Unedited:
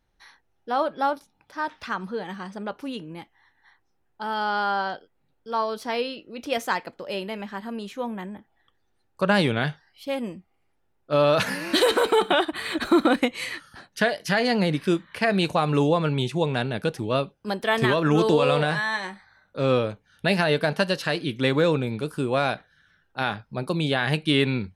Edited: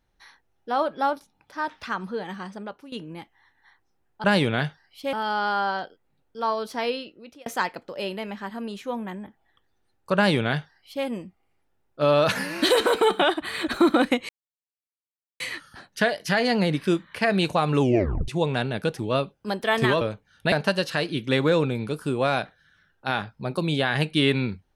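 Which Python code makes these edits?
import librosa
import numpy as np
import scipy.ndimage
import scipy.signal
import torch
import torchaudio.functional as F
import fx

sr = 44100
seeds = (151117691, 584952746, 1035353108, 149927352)

y = fx.edit(x, sr, fx.fade_out_to(start_s=2.46, length_s=0.46, floor_db=-15.5),
    fx.fade_out_span(start_s=6.06, length_s=0.51),
    fx.duplicate(start_s=9.27, length_s=0.89, to_s=4.24),
    fx.insert_silence(at_s=13.4, length_s=1.11),
    fx.tape_stop(start_s=15.81, length_s=0.47),
    fx.cut(start_s=18.01, length_s=1.79),
    fx.cut(start_s=20.31, length_s=0.33), tone=tone)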